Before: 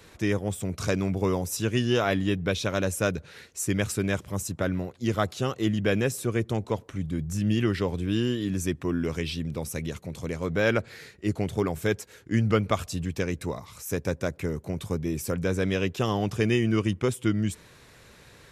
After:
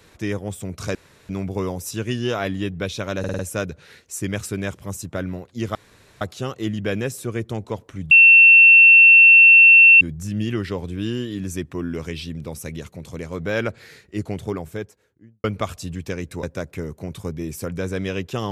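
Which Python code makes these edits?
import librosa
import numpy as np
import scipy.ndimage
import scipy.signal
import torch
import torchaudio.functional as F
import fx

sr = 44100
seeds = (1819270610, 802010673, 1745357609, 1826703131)

y = fx.studio_fade_out(x, sr, start_s=11.41, length_s=1.13)
y = fx.edit(y, sr, fx.insert_room_tone(at_s=0.95, length_s=0.34),
    fx.stutter(start_s=2.85, slice_s=0.05, count=5),
    fx.insert_room_tone(at_s=5.21, length_s=0.46),
    fx.insert_tone(at_s=7.11, length_s=1.9, hz=2700.0, db=-6.0),
    fx.cut(start_s=13.53, length_s=0.56), tone=tone)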